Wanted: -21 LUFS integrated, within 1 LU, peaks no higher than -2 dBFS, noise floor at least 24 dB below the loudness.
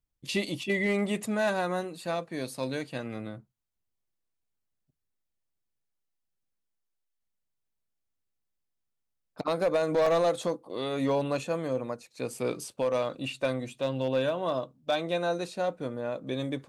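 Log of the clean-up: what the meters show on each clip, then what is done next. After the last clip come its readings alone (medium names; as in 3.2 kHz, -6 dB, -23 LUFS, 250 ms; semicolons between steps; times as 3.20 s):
clipped samples 0.5%; clipping level -19.5 dBFS; dropouts 1; longest dropout 3.6 ms; loudness -30.5 LUFS; peak level -19.5 dBFS; loudness target -21.0 LUFS
-> clip repair -19.5 dBFS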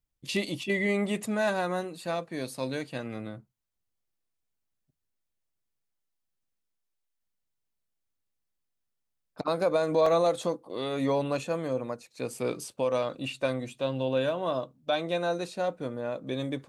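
clipped samples 0.0%; dropouts 1; longest dropout 3.6 ms
-> interpolate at 10.06 s, 3.6 ms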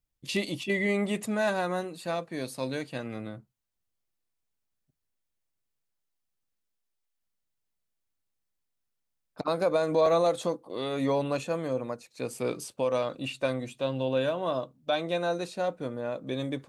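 dropouts 0; loudness -30.0 LUFS; peak level -13.0 dBFS; loudness target -21.0 LUFS
-> trim +9 dB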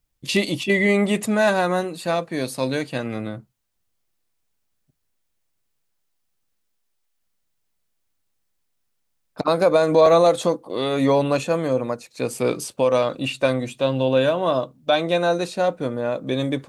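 loudness -21.0 LUFS; peak level -4.0 dBFS; noise floor -72 dBFS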